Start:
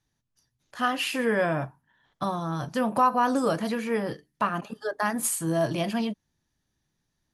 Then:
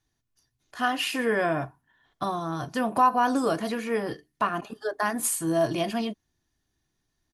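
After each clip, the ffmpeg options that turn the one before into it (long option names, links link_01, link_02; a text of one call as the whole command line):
ffmpeg -i in.wav -af "aecho=1:1:2.8:0.38" out.wav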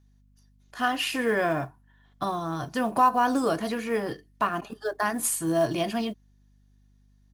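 ffmpeg -i in.wav -af "acrusher=bits=8:mode=log:mix=0:aa=0.000001,aeval=exprs='val(0)+0.00112*(sin(2*PI*50*n/s)+sin(2*PI*2*50*n/s)/2+sin(2*PI*3*50*n/s)/3+sin(2*PI*4*50*n/s)/4+sin(2*PI*5*50*n/s)/5)':channel_layout=same" out.wav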